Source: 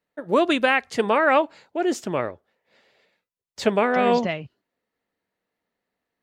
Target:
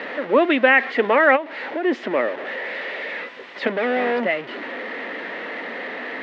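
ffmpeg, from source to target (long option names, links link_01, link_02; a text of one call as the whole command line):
ffmpeg -i in.wav -filter_complex "[0:a]aeval=exprs='val(0)+0.5*0.0501*sgn(val(0))':channel_layout=same,asplit=3[link_01][link_02][link_03];[link_01]afade=type=out:start_time=1.35:duration=0.02[link_04];[link_02]acompressor=threshold=-24dB:ratio=12,afade=type=in:start_time=1.35:duration=0.02,afade=type=out:start_time=1.83:duration=0.02[link_05];[link_03]afade=type=in:start_time=1.83:duration=0.02[link_06];[link_04][link_05][link_06]amix=inputs=3:normalize=0,asettb=1/sr,asplit=3[link_07][link_08][link_09];[link_07]atrim=end=3.674[link_10];[link_08]atrim=start=3.67:end=4.22,asetpts=PTS-STARTPTS,afade=type=in:duration=0.004:curve=qsin,afade=type=out:start_time=0.546:duration=0.004:curve=qsin,asoftclip=type=hard:threshold=-21.5dB[link_11];[link_09]atrim=start=4.216[link_12];[link_10][link_11]acrossfade=duration=0.004:curve1=hsin:curve2=qsin[link_13];[link_13][link_12]acrossfade=duration=0.004:curve1=qsin:curve2=hsin,highpass=frequency=250:width=0.5412,highpass=frequency=250:width=1.3066,equalizer=frequency=250:width_type=q:width=4:gain=4,equalizer=frequency=540:width_type=q:width=4:gain=4,equalizer=frequency=1900:width_type=q:width=4:gain=9,lowpass=frequency=3200:width=0.5412,lowpass=frequency=3200:width=1.3066" out.wav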